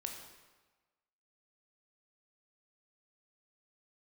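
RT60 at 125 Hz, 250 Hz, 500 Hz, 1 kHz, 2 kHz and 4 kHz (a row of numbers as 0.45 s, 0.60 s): 1.2 s, 1.2 s, 1.2 s, 1.3 s, 1.2 s, 1.0 s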